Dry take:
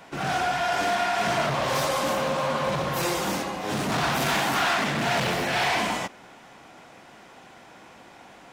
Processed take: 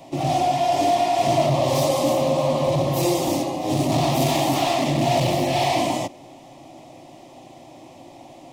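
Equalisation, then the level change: resonant low shelf 720 Hz +6.5 dB, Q 1.5; fixed phaser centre 300 Hz, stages 8; +3.5 dB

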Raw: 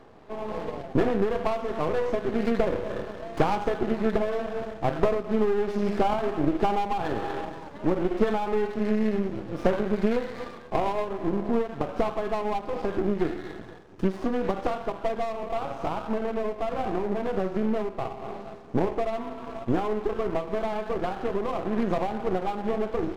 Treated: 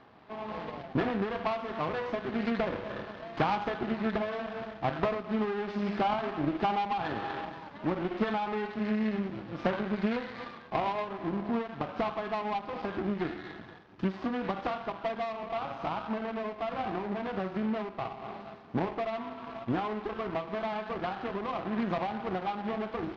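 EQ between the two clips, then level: HPF 170 Hz 6 dB/oct; LPF 4700 Hz 24 dB/oct; bell 450 Hz -9 dB 1.1 oct; 0.0 dB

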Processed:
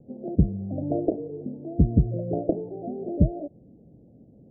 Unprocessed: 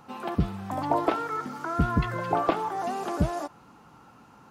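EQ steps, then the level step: steep low-pass 640 Hz 72 dB/oct; low shelf 370 Hz +6.5 dB; 0.0 dB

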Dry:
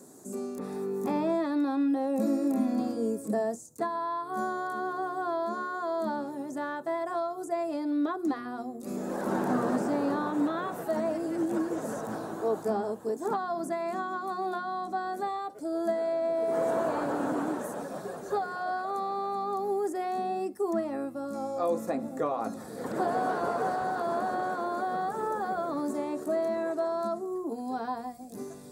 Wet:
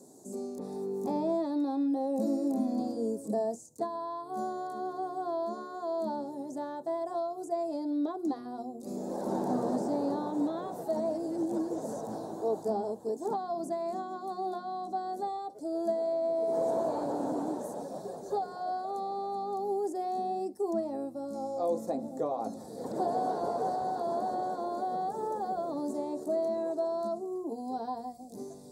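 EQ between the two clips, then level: low shelf 410 Hz -4 dB; band shelf 1900 Hz -15 dB; high shelf 9300 Hz -9.5 dB; 0.0 dB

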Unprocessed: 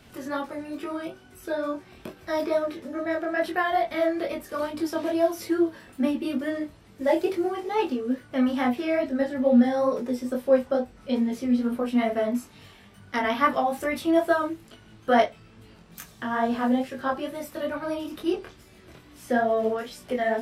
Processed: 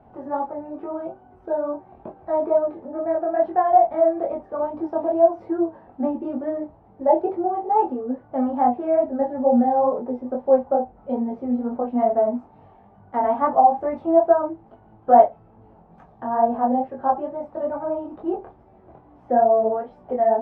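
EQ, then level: synth low-pass 800 Hz, resonance Q 4.9; -1.5 dB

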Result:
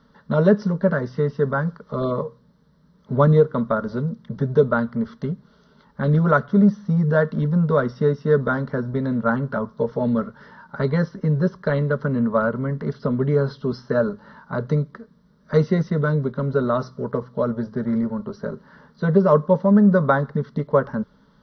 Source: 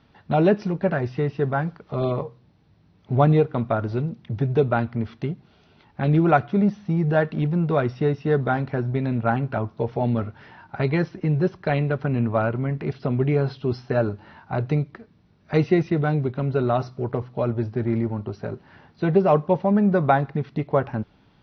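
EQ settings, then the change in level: fixed phaser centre 500 Hz, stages 8; +5.0 dB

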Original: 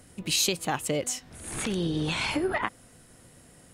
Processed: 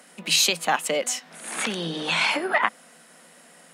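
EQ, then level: rippled Chebyshev high-pass 160 Hz, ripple 6 dB; bell 1600 Hz +11 dB 2.9 oct; high shelf 2300 Hz +8 dB; 0.0 dB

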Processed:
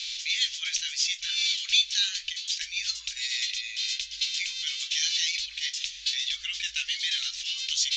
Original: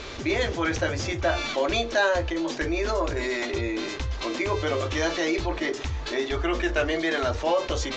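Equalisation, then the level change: inverse Chebyshev band-stop 130–770 Hz, stop band 70 dB; LPF 5200 Hz 12 dB/oct; tilt +4 dB/oct; +3.5 dB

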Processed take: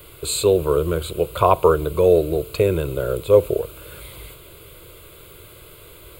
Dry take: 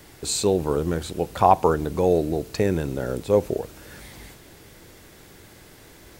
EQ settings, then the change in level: high shelf 9700 Hz +5.5 dB; fixed phaser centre 1200 Hz, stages 8; +6.5 dB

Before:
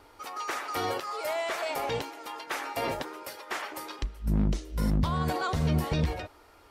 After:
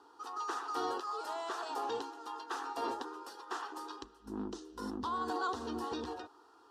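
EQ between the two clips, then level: HPF 260 Hz 12 dB/oct; air absorption 73 m; fixed phaser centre 590 Hz, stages 6; -1.5 dB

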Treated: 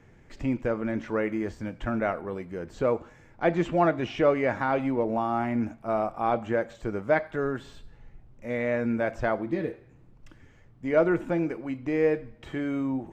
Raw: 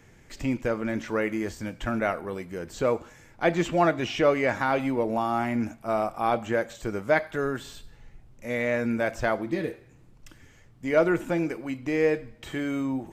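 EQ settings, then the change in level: high shelf 2800 Hz -11 dB; high shelf 11000 Hz -10 dB; 0.0 dB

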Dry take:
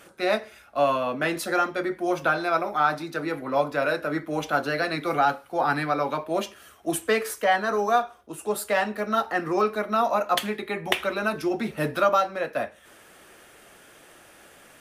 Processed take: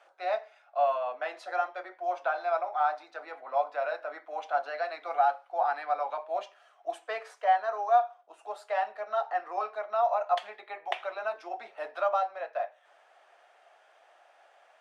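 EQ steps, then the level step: ladder high-pass 640 Hz, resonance 65%; air absorption 120 m; 0.0 dB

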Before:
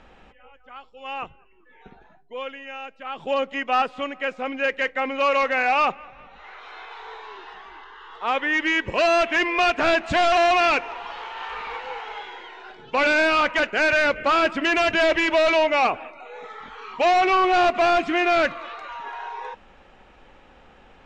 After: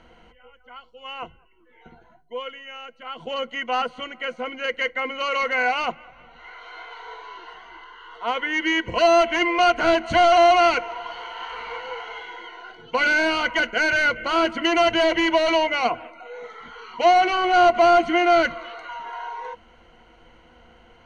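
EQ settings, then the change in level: ripple EQ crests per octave 1.9, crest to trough 14 dB; -2.5 dB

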